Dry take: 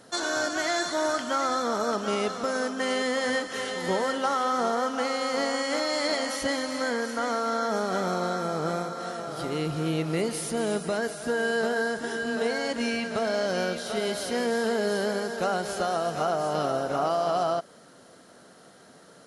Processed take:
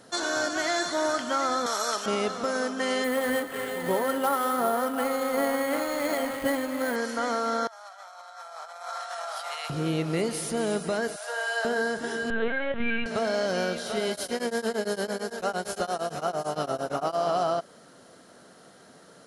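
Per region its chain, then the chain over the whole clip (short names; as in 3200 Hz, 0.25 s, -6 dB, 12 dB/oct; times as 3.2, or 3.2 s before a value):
1.66–2.06 HPF 420 Hz 6 dB/oct + tilt +3.5 dB/oct
3.04–6.96 median filter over 9 samples + comb 7.3 ms, depth 34% + careless resampling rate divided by 4×, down filtered, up hold
7.67–9.7 steep high-pass 660 Hz 48 dB/oct + negative-ratio compressor -38 dBFS, ratio -0.5
11.16–11.65 steep high-pass 550 Hz 48 dB/oct + flutter echo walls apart 11.1 m, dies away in 0.58 s
12.3–13.06 comb 5.1 ms, depth 67% + LPC vocoder at 8 kHz pitch kept
14.11–17.16 high shelf 9200 Hz +8 dB + beating tremolo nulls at 8.8 Hz
whole clip: dry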